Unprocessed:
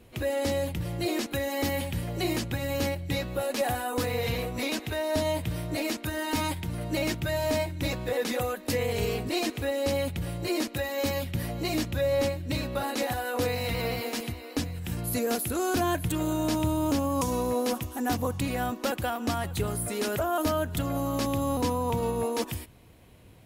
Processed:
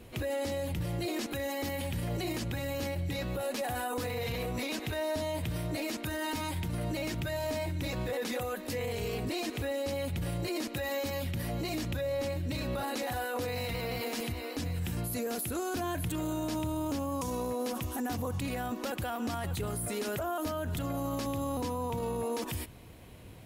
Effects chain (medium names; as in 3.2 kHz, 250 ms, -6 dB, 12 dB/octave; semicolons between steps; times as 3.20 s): peak limiter -30 dBFS, peak gain reduction 12 dB; trim +3.5 dB